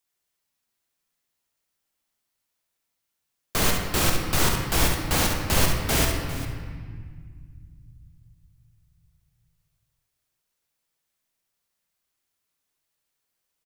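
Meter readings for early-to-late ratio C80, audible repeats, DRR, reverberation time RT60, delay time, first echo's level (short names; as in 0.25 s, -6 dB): 4.5 dB, 2, 0.5 dB, 1.8 s, 68 ms, -6.5 dB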